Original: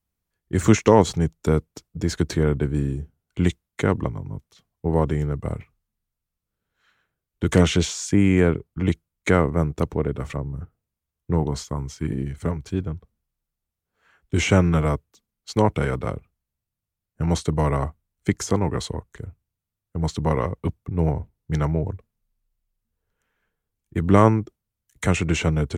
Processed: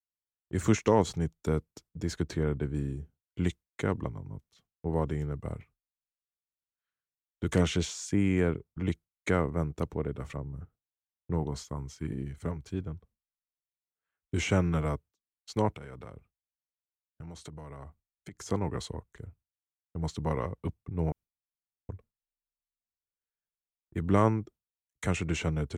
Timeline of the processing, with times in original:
0:02.17–0:02.74: high-shelf EQ 4,900 Hz → 8,700 Hz −6 dB
0:15.74–0:18.46: downward compressor 12 to 1, threshold −31 dBFS
0:21.12–0:21.89: fill with room tone
whole clip: noise gate with hold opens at −42 dBFS; level −9 dB

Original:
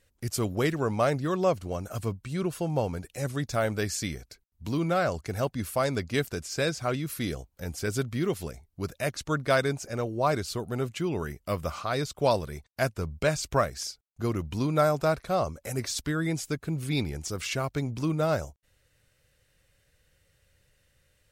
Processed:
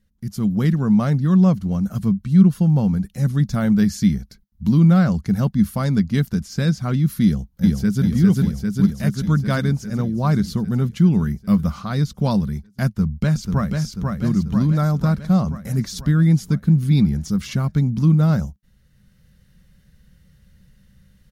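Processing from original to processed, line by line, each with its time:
0:07.23–0:08.03: delay throw 400 ms, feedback 70%, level −0.5 dB
0:12.86–0:13.79: delay throw 490 ms, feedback 60%, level −3.5 dB
whole clip: low shelf with overshoot 270 Hz +11 dB, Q 1.5; automatic gain control; thirty-one-band graphic EQ 100 Hz −12 dB, 200 Hz +11 dB, 630 Hz −5 dB, 2,500 Hz −7 dB, 8,000 Hz −8 dB; level −6 dB

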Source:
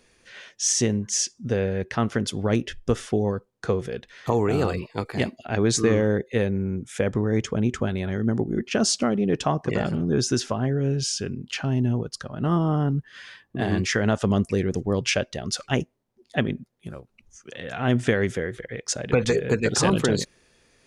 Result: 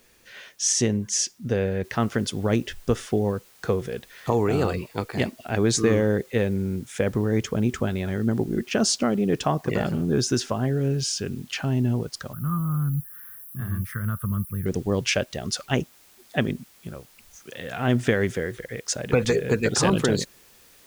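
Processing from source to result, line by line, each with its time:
0:01.84: noise floor change −63 dB −55 dB
0:12.33–0:14.66: drawn EQ curve 150 Hz 0 dB, 340 Hz −21 dB, 830 Hz −25 dB, 1,200 Hz −1 dB, 2,500 Hz −22 dB, 7,000 Hz −26 dB, 11,000 Hz +15 dB

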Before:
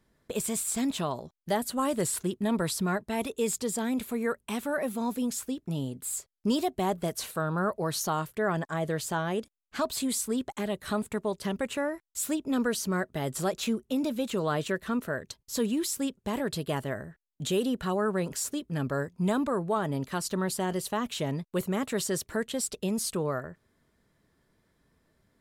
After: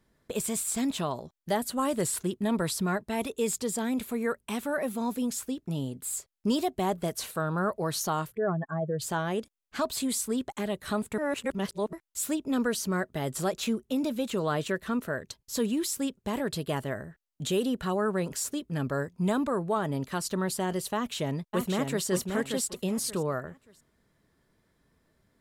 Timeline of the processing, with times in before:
0:08.32–0:09.02: expanding power law on the bin magnitudes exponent 2
0:11.18–0:11.93: reverse
0:20.95–0:22.06: delay throw 580 ms, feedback 25%, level −4.5 dB

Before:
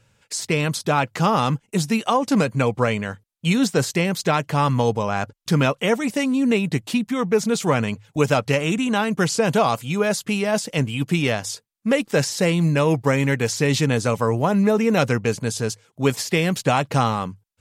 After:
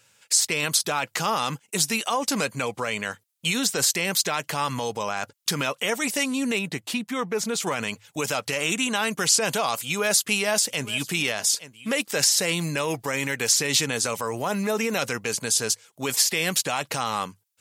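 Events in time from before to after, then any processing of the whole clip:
0:06.59–0:07.67: high-shelf EQ 3,000 Hz −8.5 dB
0:09.76–0:11.89: single-tap delay 864 ms −19 dB
whole clip: low-shelf EQ 120 Hz −6 dB; brickwall limiter −14.5 dBFS; spectral tilt +3 dB per octave

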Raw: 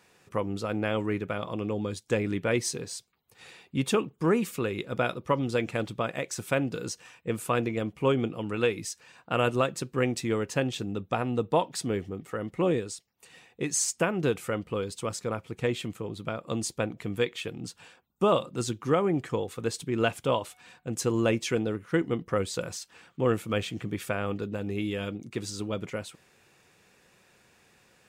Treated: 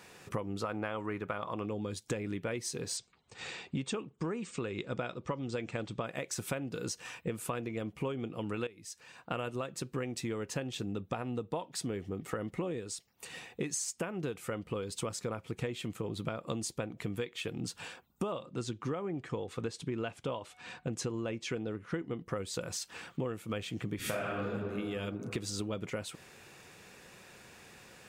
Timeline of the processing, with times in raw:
0:00.60–0:01.66: parametric band 1,100 Hz +9.5 dB 1.5 octaves
0:02.97–0:06.05: linear-phase brick-wall low-pass 8,800 Hz
0:08.67–0:10.91: fade in equal-power, from −15 dB
0:18.32–0:22.18: high-frequency loss of the air 57 metres
0:23.96–0:24.47: thrown reverb, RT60 1.7 s, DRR −9 dB
whole clip: downward compressor 12 to 1, threshold −40 dBFS; level +7 dB

